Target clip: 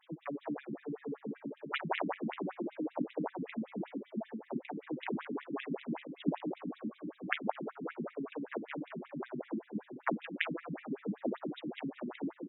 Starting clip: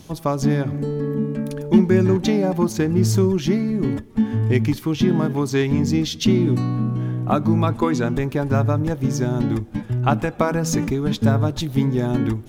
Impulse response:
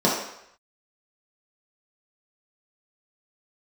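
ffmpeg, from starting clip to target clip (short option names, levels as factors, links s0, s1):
-filter_complex "[0:a]asplit=8[s0][s1][s2][s3][s4][s5][s6][s7];[s1]adelay=218,afreqshift=66,volume=0.237[s8];[s2]adelay=436,afreqshift=132,volume=0.145[s9];[s3]adelay=654,afreqshift=198,volume=0.0881[s10];[s4]adelay=872,afreqshift=264,volume=0.0537[s11];[s5]adelay=1090,afreqshift=330,volume=0.0327[s12];[s6]adelay=1308,afreqshift=396,volume=0.02[s13];[s7]adelay=1526,afreqshift=462,volume=0.0122[s14];[s0][s8][s9][s10][s11][s12][s13][s14]amix=inputs=8:normalize=0,aeval=exprs='0.668*(cos(1*acos(clip(val(0)/0.668,-1,1)))-cos(1*PI/2))+0.299*(cos(3*acos(clip(val(0)/0.668,-1,1)))-cos(3*PI/2))':c=same,afftfilt=real='re*between(b*sr/1024,220*pow(2800/220,0.5+0.5*sin(2*PI*5.2*pts/sr))/1.41,220*pow(2800/220,0.5+0.5*sin(2*PI*5.2*pts/sr))*1.41)':imag='im*between(b*sr/1024,220*pow(2800/220,0.5+0.5*sin(2*PI*5.2*pts/sr))/1.41,220*pow(2800/220,0.5+0.5*sin(2*PI*5.2*pts/sr))*1.41)':win_size=1024:overlap=0.75,volume=1.12"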